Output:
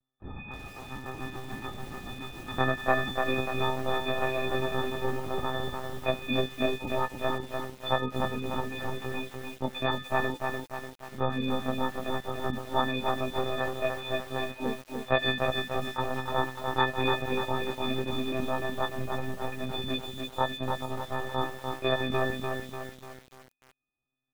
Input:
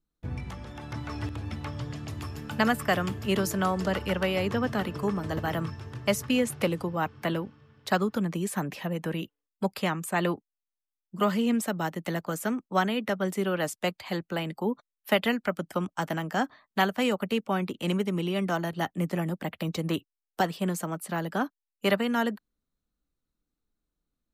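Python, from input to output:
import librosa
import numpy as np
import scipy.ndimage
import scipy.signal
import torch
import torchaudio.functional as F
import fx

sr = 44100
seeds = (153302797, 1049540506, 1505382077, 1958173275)

y = fx.freq_snap(x, sr, grid_st=6)
y = fx.lpc_monotone(y, sr, seeds[0], pitch_hz=130.0, order=16)
y = fx.echo_crushed(y, sr, ms=295, feedback_pct=55, bits=7, wet_db=-4.0)
y = F.gain(torch.from_numpy(y), -5.0).numpy()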